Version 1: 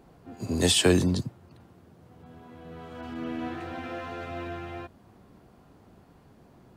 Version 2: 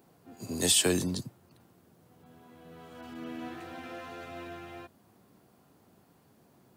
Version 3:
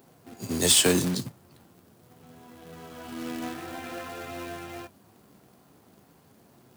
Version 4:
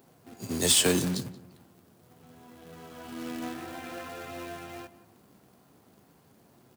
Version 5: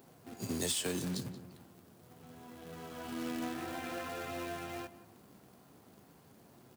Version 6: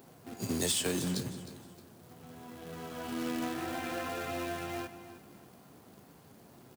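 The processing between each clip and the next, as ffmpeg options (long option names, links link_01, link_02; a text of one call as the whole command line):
ffmpeg -i in.wav -af "highpass=110,aemphasis=mode=production:type=50kf,volume=-6.5dB" out.wav
ffmpeg -i in.wav -af "flanger=delay=7.6:depth=8.7:regen=-53:speed=0.44:shape=sinusoidal,acrusher=bits=2:mode=log:mix=0:aa=0.000001,volume=8.5dB" out.wav
ffmpeg -i in.wav -filter_complex "[0:a]asplit=2[link_01][link_02];[link_02]adelay=178,lowpass=frequency=2000:poles=1,volume=-15dB,asplit=2[link_03][link_04];[link_04]adelay=178,lowpass=frequency=2000:poles=1,volume=0.31,asplit=2[link_05][link_06];[link_06]adelay=178,lowpass=frequency=2000:poles=1,volume=0.31[link_07];[link_01][link_03][link_05][link_07]amix=inputs=4:normalize=0,volume=-2.5dB" out.wav
ffmpeg -i in.wav -af "acompressor=threshold=-34dB:ratio=4" out.wav
ffmpeg -i in.wav -af "aecho=1:1:310|620|930:0.178|0.0587|0.0194,volume=3.5dB" out.wav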